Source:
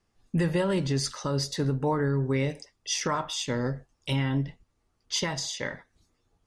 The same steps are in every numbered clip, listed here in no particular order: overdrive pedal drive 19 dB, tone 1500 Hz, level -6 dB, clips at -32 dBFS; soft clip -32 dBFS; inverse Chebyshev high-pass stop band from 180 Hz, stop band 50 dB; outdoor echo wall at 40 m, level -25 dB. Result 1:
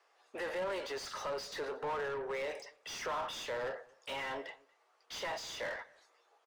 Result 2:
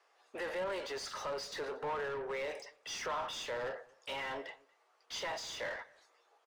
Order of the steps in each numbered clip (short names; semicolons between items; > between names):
inverse Chebyshev high-pass > soft clip > overdrive pedal > outdoor echo; inverse Chebyshev high-pass > overdrive pedal > soft clip > outdoor echo